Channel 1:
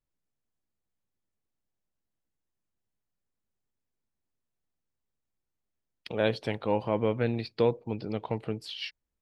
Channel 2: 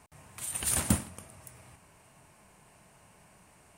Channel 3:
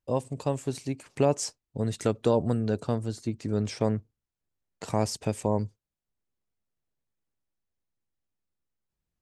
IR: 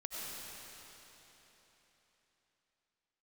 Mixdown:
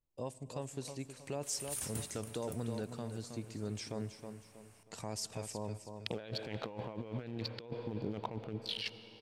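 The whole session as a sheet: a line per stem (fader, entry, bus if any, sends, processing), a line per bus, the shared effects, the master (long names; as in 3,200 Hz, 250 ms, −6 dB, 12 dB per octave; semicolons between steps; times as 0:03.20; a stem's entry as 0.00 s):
−4.5 dB, 0.00 s, no bus, send −17 dB, no echo send, adaptive Wiener filter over 25 samples
0:01.94 −21.5 dB → 0:02.30 −12.5 dB, 1.05 s, bus A, no send, echo send −17 dB, no processing
−16.0 dB, 0.10 s, bus A, send −21 dB, echo send −10.5 dB, no processing
bus A: 0.0 dB, brickwall limiter −33.5 dBFS, peak gain reduction 7 dB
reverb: on, RT60 3.8 s, pre-delay 55 ms
echo: repeating echo 318 ms, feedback 35%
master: high-shelf EQ 2,000 Hz +7 dB; compressor whose output falls as the input rises −40 dBFS, ratio −1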